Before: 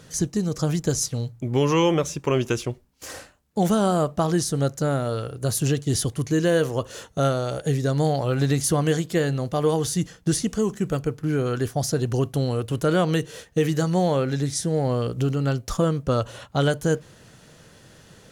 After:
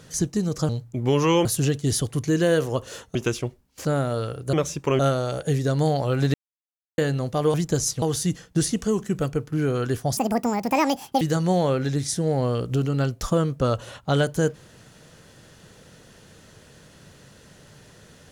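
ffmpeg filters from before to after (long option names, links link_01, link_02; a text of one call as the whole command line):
ffmpeg -i in.wav -filter_complex "[0:a]asplit=13[link_01][link_02][link_03][link_04][link_05][link_06][link_07][link_08][link_09][link_10][link_11][link_12][link_13];[link_01]atrim=end=0.692[link_14];[link_02]atrim=start=1.168:end=1.932[link_15];[link_03]atrim=start=5.478:end=7.182[link_16];[link_04]atrim=start=2.388:end=3.092[link_17];[link_05]atrim=start=4.798:end=5.482[link_18];[link_06]atrim=start=1.928:end=2.392[link_19];[link_07]atrim=start=7.178:end=8.53,asetpts=PTS-STARTPTS,afade=type=out:start_time=1.348:duration=0.004:curve=hsin[link_20];[link_08]atrim=start=8.53:end=9.17,asetpts=PTS-STARTPTS,volume=0[link_21];[link_09]atrim=start=9.17:end=9.732,asetpts=PTS-STARTPTS,afade=type=in:duration=0.004:curve=hsin[link_22];[link_10]atrim=start=0.688:end=1.172[link_23];[link_11]atrim=start=9.728:end=11.884[link_24];[link_12]atrim=start=11.88:end=13.68,asetpts=PTS-STARTPTS,asetrate=76293,aresample=44100,atrim=end_sample=45884,asetpts=PTS-STARTPTS[link_25];[link_13]atrim=start=13.676[link_26];[link_14][link_15]acrossfade=duration=0.004:curve1=hsin:curve2=hsin[link_27];[link_27][link_16]acrossfade=duration=0.004:curve1=hsin:curve2=hsin[link_28];[link_28][link_17]acrossfade=duration=0.004:curve1=hsin:curve2=hsin[link_29];[link_29][link_18]acrossfade=duration=0.004:curve1=hsin:curve2=hsin[link_30];[link_30][link_19]acrossfade=duration=0.004:curve1=hsin:curve2=hsin[link_31];[link_20][link_21][link_22]concat=n=3:v=0:a=1[link_32];[link_31][link_32]acrossfade=duration=0.004:curve1=hsin:curve2=hsin[link_33];[link_33][link_23]acrossfade=duration=0.004:curve1=hsin:curve2=hsin[link_34];[link_34][link_24]acrossfade=duration=0.004:curve1=hsin:curve2=hsin[link_35];[link_35][link_25]acrossfade=duration=0.004:curve1=hsin:curve2=hsin[link_36];[link_36][link_26]acrossfade=duration=0.004:curve1=hsin:curve2=hsin" out.wav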